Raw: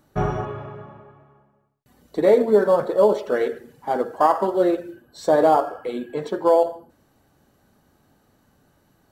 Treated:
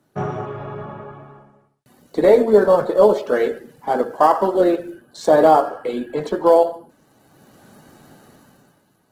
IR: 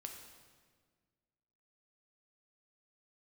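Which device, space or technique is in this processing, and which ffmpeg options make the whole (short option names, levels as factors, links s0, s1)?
video call: -af "highpass=f=110:w=0.5412,highpass=f=110:w=1.3066,dynaudnorm=f=110:g=13:m=6.31,volume=0.841" -ar 48000 -c:a libopus -b:a 16k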